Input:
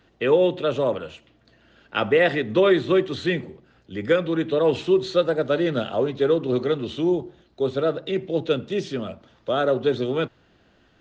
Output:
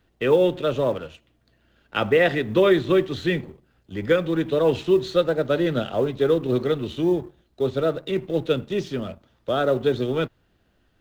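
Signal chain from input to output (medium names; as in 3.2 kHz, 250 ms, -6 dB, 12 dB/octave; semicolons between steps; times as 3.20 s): companding laws mixed up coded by A; bass shelf 83 Hz +12 dB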